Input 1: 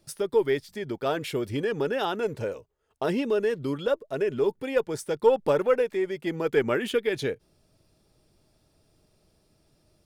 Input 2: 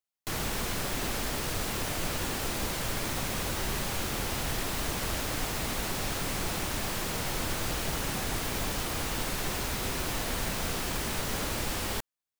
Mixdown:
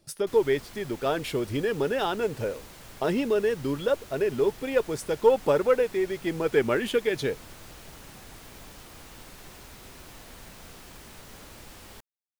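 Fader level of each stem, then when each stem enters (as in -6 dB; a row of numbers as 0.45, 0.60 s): +0.5, -14.5 dB; 0.00, 0.00 s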